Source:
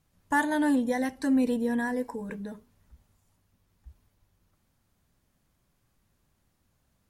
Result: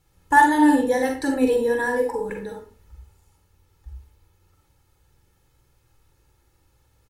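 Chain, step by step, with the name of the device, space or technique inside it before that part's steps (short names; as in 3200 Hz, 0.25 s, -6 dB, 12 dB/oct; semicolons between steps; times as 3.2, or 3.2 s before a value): microphone above a desk (comb 2.3 ms, depth 72%; reverb RT60 0.40 s, pre-delay 39 ms, DRR 1.5 dB); gain +4.5 dB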